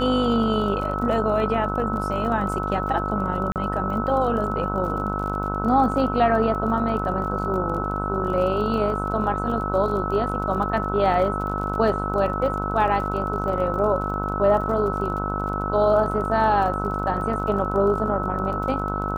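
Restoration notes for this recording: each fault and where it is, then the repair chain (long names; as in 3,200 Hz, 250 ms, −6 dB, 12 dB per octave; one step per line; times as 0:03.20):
mains buzz 50 Hz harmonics 30 −28 dBFS
surface crackle 31 per second −32 dBFS
whistle 1,300 Hz −28 dBFS
0:03.52–0:03.56: drop-out 38 ms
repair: click removal
hum removal 50 Hz, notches 30
notch filter 1,300 Hz, Q 30
repair the gap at 0:03.52, 38 ms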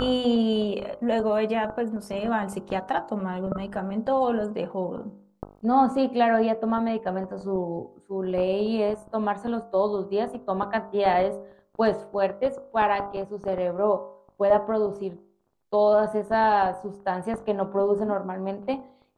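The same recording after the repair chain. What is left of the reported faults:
none of them is left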